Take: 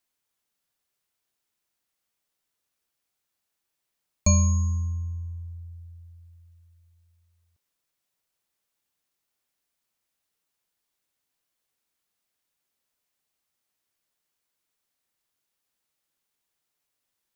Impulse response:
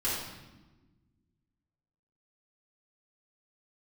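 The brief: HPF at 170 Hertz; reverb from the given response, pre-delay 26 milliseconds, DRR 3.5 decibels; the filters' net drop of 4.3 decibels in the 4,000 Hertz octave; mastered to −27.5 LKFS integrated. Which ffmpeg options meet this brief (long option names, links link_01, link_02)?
-filter_complex "[0:a]highpass=170,equalizer=frequency=4000:width_type=o:gain=-4.5,asplit=2[link_01][link_02];[1:a]atrim=start_sample=2205,adelay=26[link_03];[link_02][link_03]afir=irnorm=-1:irlink=0,volume=-11.5dB[link_04];[link_01][link_04]amix=inputs=2:normalize=0,volume=2dB"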